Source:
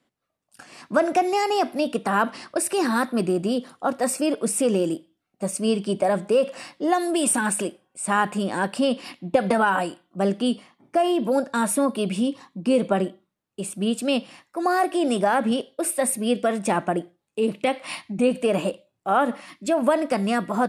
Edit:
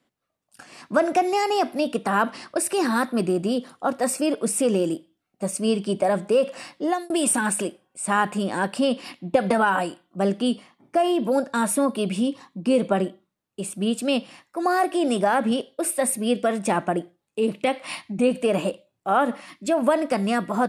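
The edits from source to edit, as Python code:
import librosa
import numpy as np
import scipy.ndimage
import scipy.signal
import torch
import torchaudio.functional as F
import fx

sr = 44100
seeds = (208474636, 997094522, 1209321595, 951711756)

y = fx.edit(x, sr, fx.fade_out_span(start_s=6.76, length_s=0.34, curve='qsin'), tone=tone)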